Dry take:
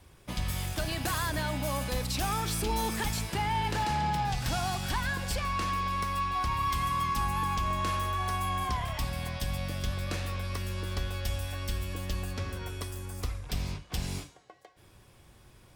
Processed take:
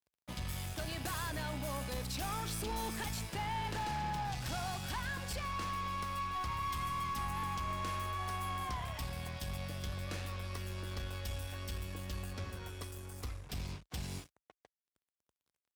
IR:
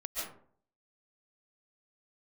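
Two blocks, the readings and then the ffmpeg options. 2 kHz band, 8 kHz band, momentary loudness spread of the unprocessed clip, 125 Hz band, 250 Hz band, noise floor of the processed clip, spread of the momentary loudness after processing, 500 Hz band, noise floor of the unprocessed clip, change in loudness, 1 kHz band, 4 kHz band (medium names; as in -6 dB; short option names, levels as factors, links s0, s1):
-7.0 dB, -7.0 dB, 7 LU, -7.5 dB, -7.5 dB, under -85 dBFS, 6 LU, -7.5 dB, -58 dBFS, -7.5 dB, -7.5 dB, -7.0 dB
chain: -af "aeval=exprs='sgn(val(0))*max(abs(val(0))-0.00398,0)':c=same,highpass=f=46:w=0.5412,highpass=f=46:w=1.3066,aeval=exprs='(tanh(25.1*val(0)+0.25)-tanh(0.25))/25.1':c=same,volume=0.631"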